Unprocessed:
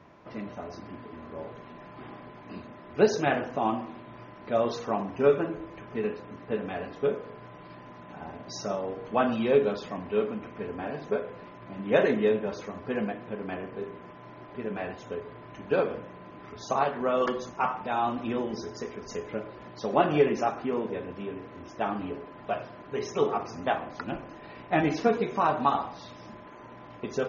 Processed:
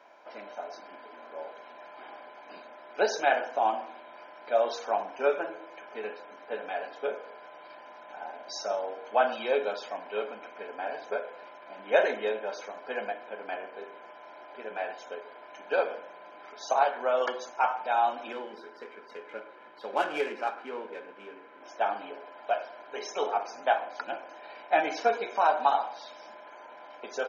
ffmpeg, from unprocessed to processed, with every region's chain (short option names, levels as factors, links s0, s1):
-filter_complex "[0:a]asettb=1/sr,asplit=3[s0][s1][s2];[s0]atrim=end=18.324[s3];[s1]atrim=start=18.32:end=21.62,asetpts=PTS-STARTPTS,afade=t=in:d=0.004:c=qsin,afade=t=out:st=3.296:d=0.004:c=qsin,lowpass=f=4300:w=0.5412,lowpass=f=4300:w=1.3066,adynamicsmooth=sensitivity=8:basefreq=2700,equalizer=f=680:w=2.4:g=-10[s4];[s2]atrim=start=21.616[s5];[s3][s4]acrossfade=d=0.004:c1=hsin:c2=qsin[s6];[s6][s5]acrossfade=d=0.004:c1=qsin:c2=hsin,highpass=f=380:w=0.5412,highpass=f=380:w=1.3066,aecho=1:1:1.3:0.54"